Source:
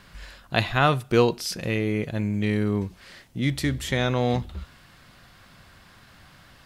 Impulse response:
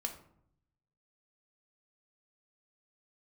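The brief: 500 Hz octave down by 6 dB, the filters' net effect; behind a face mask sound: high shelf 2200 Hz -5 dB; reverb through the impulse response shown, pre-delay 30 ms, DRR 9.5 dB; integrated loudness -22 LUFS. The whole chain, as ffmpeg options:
-filter_complex "[0:a]equalizer=f=500:t=o:g=-7,asplit=2[a][b];[1:a]atrim=start_sample=2205,adelay=30[c];[b][c]afir=irnorm=-1:irlink=0,volume=-9.5dB[d];[a][d]amix=inputs=2:normalize=0,highshelf=f=2.2k:g=-5,volume=5dB"

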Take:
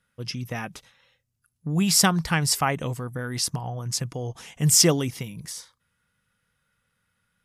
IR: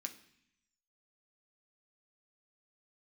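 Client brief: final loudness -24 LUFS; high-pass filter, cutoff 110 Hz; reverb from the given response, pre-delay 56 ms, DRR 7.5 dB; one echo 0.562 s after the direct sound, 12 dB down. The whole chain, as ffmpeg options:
-filter_complex "[0:a]highpass=110,aecho=1:1:562:0.251,asplit=2[a][b];[1:a]atrim=start_sample=2205,adelay=56[c];[b][c]afir=irnorm=-1:irlink=0,volume=-4.5dB[d];[a][d]amix=inputs=2:normalize=0,volume=-1.5dB"

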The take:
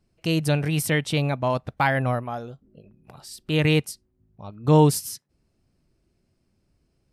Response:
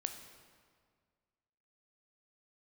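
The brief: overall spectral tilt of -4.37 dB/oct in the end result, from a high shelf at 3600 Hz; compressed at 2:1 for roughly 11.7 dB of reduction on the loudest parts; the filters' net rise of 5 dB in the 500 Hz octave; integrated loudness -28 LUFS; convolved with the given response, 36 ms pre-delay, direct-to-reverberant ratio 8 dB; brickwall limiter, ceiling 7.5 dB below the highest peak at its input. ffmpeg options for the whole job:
-filter_complex "[0:a]equalizer=f=500:t=o:g=5.5,highshelf=f=3.6k:g=8.5,acompressor=threshold=-31dB:ratio=2,alimiter=limit=-22dB:level=0:latency=1,asplit=2[a][b];[1:a]atrim=start_sample=2205,adelay=36[c];[b][c]afir=irnorm=-1:irlink=0,volume=-7.5dB[d];[a][d]amix=inputs=2:normalize=0,volume=4.5dB"

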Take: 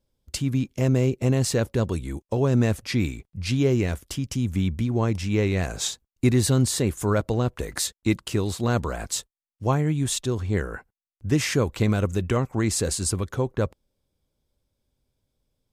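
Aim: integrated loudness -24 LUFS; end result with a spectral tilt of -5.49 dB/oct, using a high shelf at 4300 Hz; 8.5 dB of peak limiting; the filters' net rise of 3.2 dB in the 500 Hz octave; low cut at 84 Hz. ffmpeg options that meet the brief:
-af "highpass=84,equalizer=f=500:t=o:g=4,highshelf=f=4.3k:g=-4,volume=3dB,alimiter=limit=-12.5dB:level=0:latency=1"

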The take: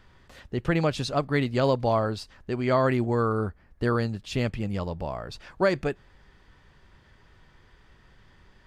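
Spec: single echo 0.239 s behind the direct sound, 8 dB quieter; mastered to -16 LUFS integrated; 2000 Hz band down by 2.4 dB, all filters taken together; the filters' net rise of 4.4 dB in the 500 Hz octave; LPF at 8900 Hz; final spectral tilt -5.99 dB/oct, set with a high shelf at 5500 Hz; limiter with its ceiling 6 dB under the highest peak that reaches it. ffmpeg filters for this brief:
-af "lowpass=8.9k,equalizer=f=500:t=o:g=5.5,equalizer=f=2k:t=o:g=-4.5,highshelf=f=5.5k:g=8.5,alimiter=limit=-14dB:level=0:latency=1,aecho=1:1:239:0.398,volume=9.5dB"

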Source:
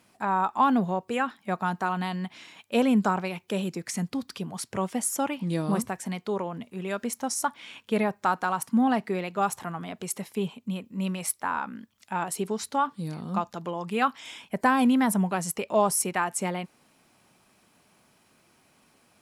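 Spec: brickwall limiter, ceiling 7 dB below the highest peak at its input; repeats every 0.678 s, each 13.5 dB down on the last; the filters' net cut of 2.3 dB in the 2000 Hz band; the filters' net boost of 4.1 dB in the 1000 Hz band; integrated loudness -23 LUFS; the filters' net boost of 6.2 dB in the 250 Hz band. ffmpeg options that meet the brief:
-af "equalizer=f=250:t=o:g=7,equalizer=f=1k:t=o:g=6,equalizer=f=2k:t=o:g=-6.5,alimiter=limit=-13dB:level=0:latency=1,aecho=1:1:678|1356:0.211|0.0444,volume=2dB"

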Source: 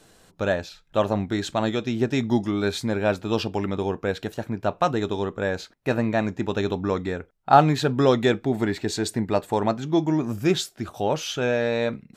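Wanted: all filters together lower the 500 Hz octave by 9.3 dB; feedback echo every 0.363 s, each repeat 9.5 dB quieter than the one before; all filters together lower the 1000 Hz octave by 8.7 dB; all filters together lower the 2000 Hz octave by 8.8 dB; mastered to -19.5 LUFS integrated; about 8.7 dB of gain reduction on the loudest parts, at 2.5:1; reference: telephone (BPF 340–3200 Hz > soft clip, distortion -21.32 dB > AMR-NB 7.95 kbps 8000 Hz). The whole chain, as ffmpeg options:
-af "equalizer=f=500:t=o:g=-8.5,equalizer=f=1k:t=o:g=-6.5,equalizer=f=2k:t=o:g=-8,acompressor=threshold=-30dB:ratio=2.5,highpass=340,lowpass=3.2k,aecho=1:1:363|726|1089|1452:0.335|0.111|0.0365|0.012,asoftclip=threshold=-23dB,volume=20.5dB" -ar 8000 -c:a libopencore_amrnb -b:a 7950

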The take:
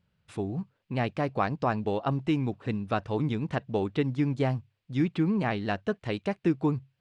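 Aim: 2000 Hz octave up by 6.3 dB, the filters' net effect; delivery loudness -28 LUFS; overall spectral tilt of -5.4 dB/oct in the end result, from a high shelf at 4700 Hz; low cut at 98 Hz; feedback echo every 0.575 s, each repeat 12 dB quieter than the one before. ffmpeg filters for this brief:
-af "highpass=98,equalizer=f=2k:t=o:g=7,highshelf=f=4.7k:g=5,aecho=1:1:575|1150|1725:0.251|0.0628|0.0157,volume=1dB"

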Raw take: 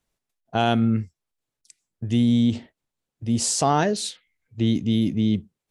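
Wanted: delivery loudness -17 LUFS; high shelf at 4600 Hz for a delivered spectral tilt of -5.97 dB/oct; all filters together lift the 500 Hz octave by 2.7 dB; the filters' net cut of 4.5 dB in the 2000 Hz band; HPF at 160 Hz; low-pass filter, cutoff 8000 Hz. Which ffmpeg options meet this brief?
-af "highpass=160,lowpass=8k,equalizer=f=500:t=o:g=4.5,equalizer=f=2k:t=o:g=-5.5,highshelf=f=4.6k:g=-7.5,volume=6dB"

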